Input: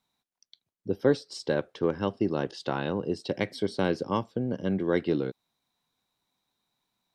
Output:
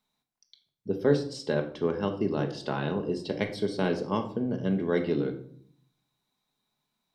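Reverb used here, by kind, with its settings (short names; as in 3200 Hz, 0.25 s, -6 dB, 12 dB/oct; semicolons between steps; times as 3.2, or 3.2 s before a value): shoebox room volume 840 m³, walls furnished, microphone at 1.4 m; gain -2 dB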